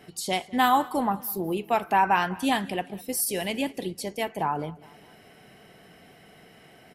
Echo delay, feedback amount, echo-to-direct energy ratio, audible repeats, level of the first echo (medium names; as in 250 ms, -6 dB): 202 ms, 47%, -21.0 dB, 2, -22.0 dB